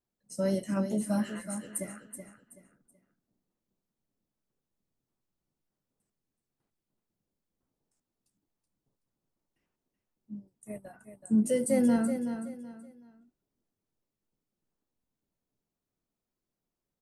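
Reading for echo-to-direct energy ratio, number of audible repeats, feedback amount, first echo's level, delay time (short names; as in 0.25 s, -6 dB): -8.5 dB, 3, 28%, -9.0 dB, 0.377 s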